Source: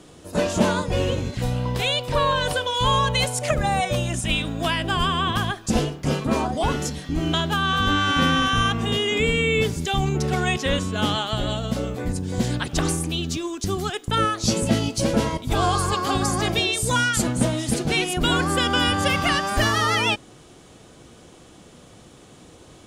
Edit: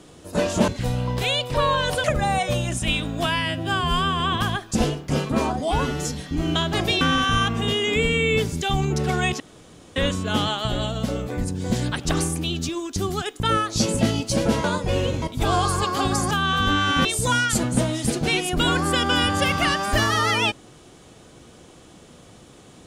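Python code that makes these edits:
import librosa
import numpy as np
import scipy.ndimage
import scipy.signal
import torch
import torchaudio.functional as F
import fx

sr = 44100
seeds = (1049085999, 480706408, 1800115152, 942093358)

y = fx.edit(x, sr, fx.move(start_s=0.68, length_s=0.58, to_s=15.32),
    fx.cut(start_s=2.62, length_s=0.84),
    fx.stretch_span(start_s=4.68, length_s=0.47, factor=2.0),
    fx.stretch_span(start_s=6.56, length_s=0.34, factor=1.5),
    fx.swap(start_s=7.51, length_s=0.74, other_s=16.41, other_length_s=0.28),
    fx.insert_room_tone(at_s=10.64, length_s=0.56), tone=tone)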